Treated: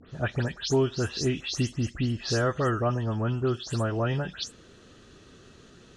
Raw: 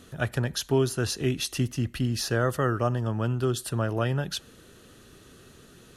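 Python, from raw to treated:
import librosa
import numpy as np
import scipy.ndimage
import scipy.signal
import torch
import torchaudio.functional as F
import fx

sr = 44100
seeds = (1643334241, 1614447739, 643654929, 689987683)

y = fx.spec_delay(x, sr, highs='late', ms=139)
y = scipy.signal.sosfilt(scipy.signal.butter(4, 7000.0, 'lowpass', fs=sr, output='sos'), y)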